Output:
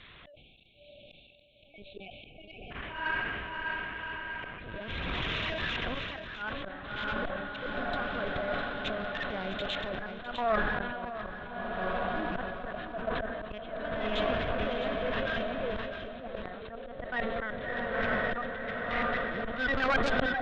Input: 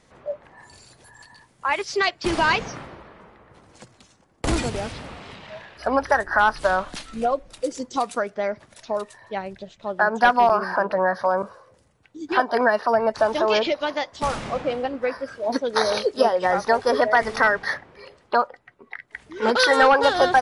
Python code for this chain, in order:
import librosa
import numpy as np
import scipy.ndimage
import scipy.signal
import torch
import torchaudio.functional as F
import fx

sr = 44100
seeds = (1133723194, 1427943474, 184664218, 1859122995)

y = x + 0.5 * 10.0 ** (-19.0 / 20.0) * np.diff(np.sign(x), prepend=np.sign(x[:1]))
y = fx.cheby1_bandpass(y, sr, low_hz=470.0, high_hz=3000.0, order=4, at=(1.99, 4.61))
y = fx.lpc_vocoder(y, sr, seeds[0], excitation='pitch_kept', order=8)
y = fx.level_steps(y, sr, step_db=19)
y = fx.air_absorb(y, sr, metres=99.0)
y = fx.echo_diffused(y, sr, ms=643, feedback_pct=72, wet_db=-10)
y = fx.auto_swell(y, sr, attack_ms=732.0)
y = fx.tube_stage(y, sr, drive_db=21.0, bias=0.5)
y = fx.peak_eq(y, sr, hz=850.0, db=-11.5, octaves=0.32)
y = y + 10.0 ** (-12.5 / 20.0) * np.pad(y, (int(656 * sr / 1000.0), 0))[:len(y)]
y = fx.spec_erase(y, sr, start_s=0.32, length_s=2.39, low_hz=830.0, high_hz=2200.0)
y = fx.sustainer(y, sr, db_per_s=28.0)
y = y * librosa.db_to_amplitude(8.0)